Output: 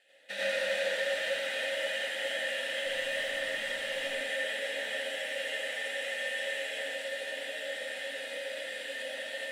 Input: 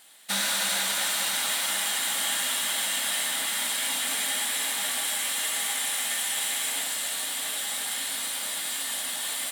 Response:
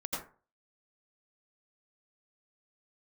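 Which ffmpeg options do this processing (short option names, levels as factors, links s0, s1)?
-filter_complex "[0:a]asplit=3[s0][s1][s2];[s0]bandpass=f=530:t=q:w=8,volume=1[s3];[s1]bandpass=f=1840:t=q:w=8,volume=0.501[s4];[s2]bandpass=f=2480:t=q:w=8,volume=0.355[s5];[s3][s4][s5]amix=inputs=3:normalize=0,asettb=1/sr,asplit=3[s6][s7][s8];[s6]atrim=end=2.864[s9];[s7]atrim=start=2.86:end=4.07,asetpts=PTS-STARTPTS,afade=t=in:d=0.004:c=qsin,afade=t=out:st=1.206:d=0.004:c=qsin,aeval=exprs='0.0299*(cos(1*acos(clip(val(0)/0.0299,-1,1)))-cos(1*PI/2))+0.000668*(cos(6*acos(clip(val(0)/0.0299,-1,1)))-cos(6*PI/2))+0.0015*(cos(8*acos(clip(val(0)/0.0299,-1,1)))-cos(8*PI/2))':c=same[s10];[s8]atrim=start=4.066[s11];[s9][s10]acrossfade=d=0.004:c1=hsin:c2=qsin[s12];[s12][s11]acrossfade=d=0.004:c1=qsin:c2=hsin,asoftclip=type=hard:threshold=0.0178[s13];[1:a]atrim=start_sample=2205[s14];[s13][s14]afir=irnorm=-1:irlink=0,volume=2.37"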